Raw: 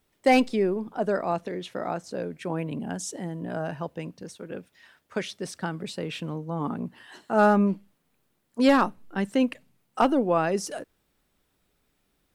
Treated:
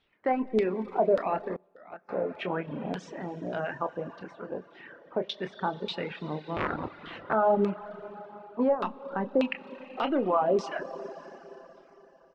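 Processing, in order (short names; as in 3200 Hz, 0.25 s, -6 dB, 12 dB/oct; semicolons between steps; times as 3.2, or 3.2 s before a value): 6.56–7.33 cycle switcher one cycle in 3, inverted; LPF 5700 Hz 12 dB/oct; low shelf 260 Hz -6.5 dB; doubler 27 ms -9 dB; limiter -19 dBFS, peak gain reduction 10.5 dB; LFO low-pass saw down 1.7 Hz 490–3700 Hz; Schroeder reverb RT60 3.7 s, combs from 29 ms, DRR 7 dB; 1.56–2.09 gate -24 dBFS, range -19 dB; reverb removal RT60 0.7 s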